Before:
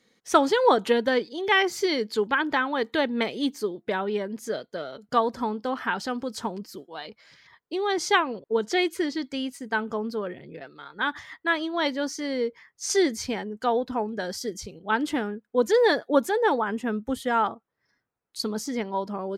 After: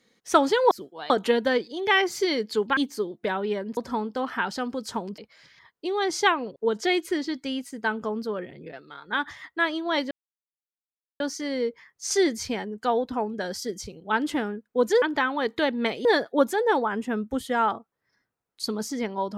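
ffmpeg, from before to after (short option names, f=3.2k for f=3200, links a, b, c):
-filter_complex "[0:a]asplit=9[a][b][c][d][e][f][g][h][i];[a]atrim=end=0.712[j];[b]atrim=start=6.668:end=7.062[k];[c]atrim=start=0.708:end=2.382[l];[d]atrim=start=3.408:end=4.412[m];[e]atrim=start=5.258:end=6.672[n];[f]atrim=start=7.058:end=11.99,asetpts=PTS-STARTPTS,afade=t=out:st=4.928:d=0.004:c=hsin,apad=pad_dur=1.09[o];[g]atrim=start=11.99:end=15.812,asetpts=PTS-STARTPTS,afade=t=in:d=0.004:c=hsin[p];[h]atrim=start=2.378:end=3.412[q];[i]atrim=start=15.808[r];[j][k]acrossfade=d=0.004:c1=hsin:c2=hsin[s];[s][l]acrossfade=d=0.004:c1=hsin:c2=hsin[t];[t][m]acrossfade=d=0.004:c1=hsin:c2=hsin[u];[u][n]acrossfade=d=0.004:c1=hsin:c2=hsin[v];[o][p]concat=n=2:v=0:a=1[w];[v][w]acrossfade=d=0.004:c1=hsin:c2=hsin[x];[x][q]acrossfade=d=0.004:c1=hsin:c2=hsin[y];[y][r]acrossfade=d=0.004:c1=hsin:c2=hsin"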